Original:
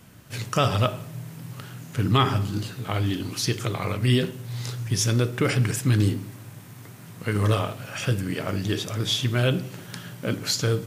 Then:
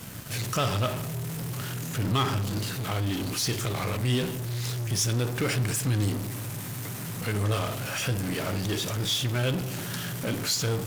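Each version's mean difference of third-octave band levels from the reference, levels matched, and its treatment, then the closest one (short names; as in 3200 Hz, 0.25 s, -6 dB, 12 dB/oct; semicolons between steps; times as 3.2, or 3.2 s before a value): 6.5 dB: high shelf 4900 Hz +6 dB; in parallel at -11.5 dB: fuzz box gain 45 dB, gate -54 dBFS; on the sum: gain -8.5 dB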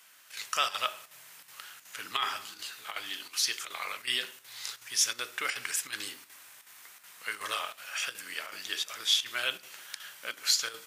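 12.5 dB: HPF 1400 Hz 12 dB/oct; chopper 2.7 Hz, depth 60%, duty 85%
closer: first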